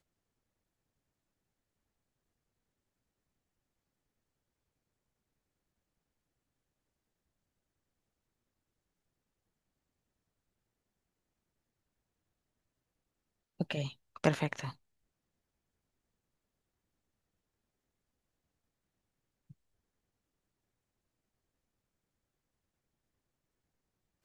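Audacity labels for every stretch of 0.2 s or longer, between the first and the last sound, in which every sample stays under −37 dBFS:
13.880000	14.160000	silence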